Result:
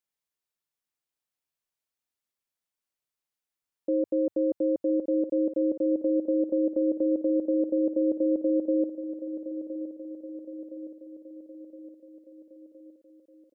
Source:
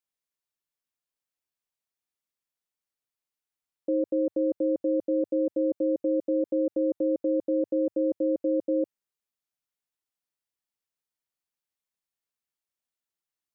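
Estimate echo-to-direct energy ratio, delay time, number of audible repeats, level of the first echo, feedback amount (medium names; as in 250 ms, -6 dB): -10.0 dB, 1016 ms, 5, -11.5 dB, 57%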